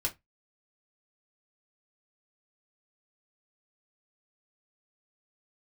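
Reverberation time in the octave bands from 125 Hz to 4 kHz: 0.30 s, 0.20 s, 0.15 s, 0.15 s, 0.15 s, 0.15 s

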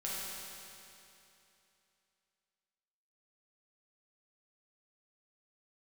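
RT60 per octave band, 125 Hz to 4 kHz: 2.9 s, 2.9 s, 2.9 s, 2.9 s, 2.9 s, 2.8 s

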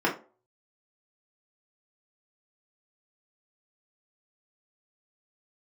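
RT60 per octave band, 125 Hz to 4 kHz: 0.30 s, 0.35 s, 0.40 s, 0.35 s, 0.25 s, 0.20 s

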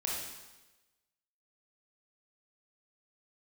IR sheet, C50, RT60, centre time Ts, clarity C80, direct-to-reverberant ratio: 0.0 dB, 1.1 s, 70 ms, 3.5 dB, -4.0 dB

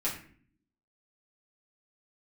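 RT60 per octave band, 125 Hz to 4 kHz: 0.85 s, 0.95 s, 0.55 s, 0.45 s, 0.50 s, 0.35 s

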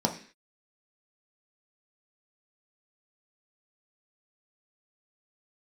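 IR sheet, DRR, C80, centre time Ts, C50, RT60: 1.5 dB, 15.5 dB, 14 ms, 11.0 dB, 0.45 s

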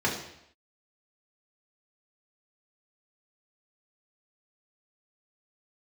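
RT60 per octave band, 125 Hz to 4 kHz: 0.75 s, 0.75 s, 0.75 s, 0.75 s, 0.75 s, 0.75 s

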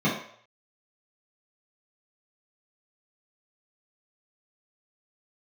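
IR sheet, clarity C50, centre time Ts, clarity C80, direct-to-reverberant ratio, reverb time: 4.5 dB, 37 ms, 8.5 dB, -10.0 dB, 0.60 s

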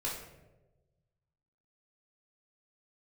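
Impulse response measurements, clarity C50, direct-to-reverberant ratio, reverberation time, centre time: 3.0 dB, -6.0 dB, 1.1 s, 49 ms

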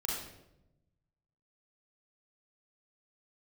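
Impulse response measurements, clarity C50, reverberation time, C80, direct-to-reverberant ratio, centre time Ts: 0.0 dB, 0.90 s, 4.0 dB, -4.0 dB, 62 ms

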